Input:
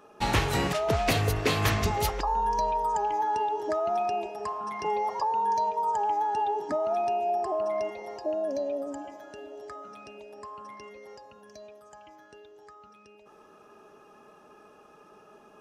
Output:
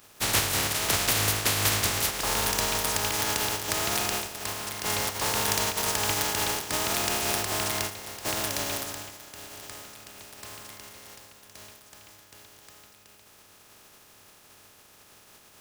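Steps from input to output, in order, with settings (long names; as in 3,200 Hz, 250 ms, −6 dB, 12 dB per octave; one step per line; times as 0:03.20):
compressing power law on the bin magnitudes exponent 0.2
parametric band 100 Hz +11.5 dB 0.24 octaves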